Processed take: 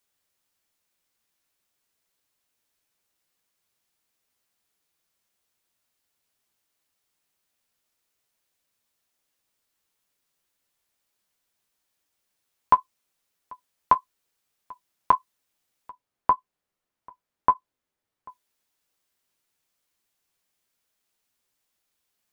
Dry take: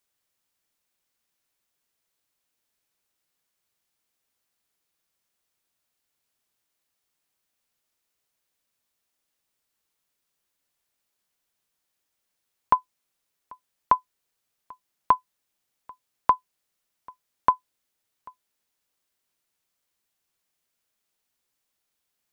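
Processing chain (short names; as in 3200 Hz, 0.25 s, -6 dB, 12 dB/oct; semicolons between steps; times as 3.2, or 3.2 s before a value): 15.9–18.28 high shelf 2300 Hz -12 dB; flange 1.7 Hz, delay 8.8 ms, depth 4.4 ms, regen -38%; gain +5.5 dB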